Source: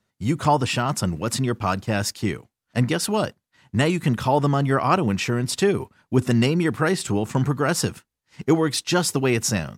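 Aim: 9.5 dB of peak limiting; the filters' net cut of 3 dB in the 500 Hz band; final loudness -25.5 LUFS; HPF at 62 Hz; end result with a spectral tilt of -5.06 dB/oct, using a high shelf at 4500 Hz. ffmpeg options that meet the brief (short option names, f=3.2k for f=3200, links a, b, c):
-af "highpass=62,equalizer=f=500:t=o:g=-4,highshelf=f=4.5k:g=-4.5,volume=1.5dB,alimiter=limit=-14.5dB:level=0:latency=1"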